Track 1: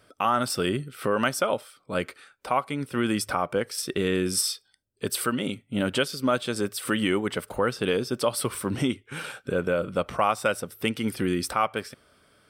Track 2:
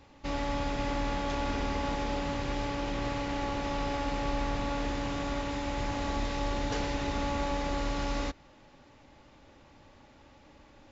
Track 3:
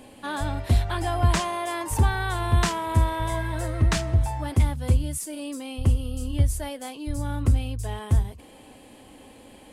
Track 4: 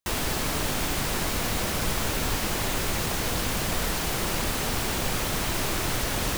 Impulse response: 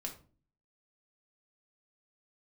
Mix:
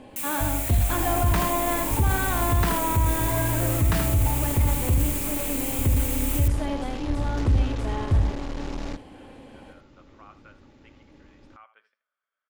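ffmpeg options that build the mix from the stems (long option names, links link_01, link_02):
-filter_complex "[0:a]lowpass=1700,flanger=delay=4.6:depth=4.7:regen=79:speed=0.21:shape=triangular,highpass=1300,volume=-15.5dB,asplit=2[link_01][link_02];[link_02]volume=-14dB[link_03];[1:a]lowshelf=frequency=510:width_type=q:width=1.5:gain=6.5,aeval=exprs='(tanh(39.8*val(0)+0.7)-tanh(0.7))/39.8':channel_layout=same,adelay=650,volume=2dB,asplit=2[link_04][link_05];[link_05]volume=-21dB[link_06];[2:a]aemphasis=mode=reproduction:type=75fm,volume=1dB,asplit=2[link_07][link_08];[link_08]volume=-7dB[link_09];[3:a]highpass=frequency=2300:width_type=q:width=4.4,aeval=exprs='0.0562*(abs(mod(val(0)/0.0562+3,4)-2)-1)':channel_layout=same,aexciter=amount=4.1:drive=7.7:freq=6900,adelay=100,volume=-12dB[link_10];[link_03][link_06][link_09]amix=inputs=3:normalize=0,aecho=0:1:78:1[link_11];[link_01][link_04][link_07][link_10][link_11]amix=inputs=5:normalize=0,alimiter=limit=-13dB:level=0:latency=1:release=16"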